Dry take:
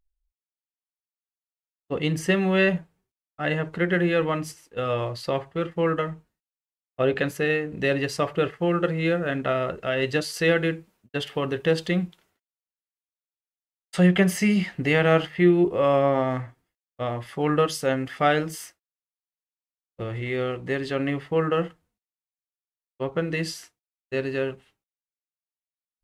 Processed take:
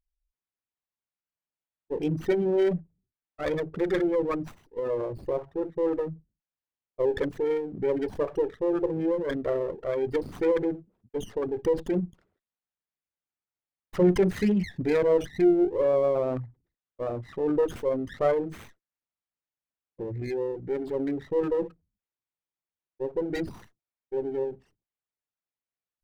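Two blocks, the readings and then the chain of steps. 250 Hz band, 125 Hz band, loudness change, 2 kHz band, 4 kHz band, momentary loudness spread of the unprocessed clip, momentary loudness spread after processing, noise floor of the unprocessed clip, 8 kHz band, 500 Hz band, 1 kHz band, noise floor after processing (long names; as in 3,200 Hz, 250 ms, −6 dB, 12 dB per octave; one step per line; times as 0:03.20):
−3.0 dB, −8.5 dB, −3.0 dB, −14.0 dB, −14.0 dB, 13 LU, 12 LU, below −85 dBFS, below −10 dB, −1.0 dB, −8.5 dB, below −85 dBFS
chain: spectral envelope exaggerated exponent 3
windowed peak hold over 9 samples
level −2.5 dB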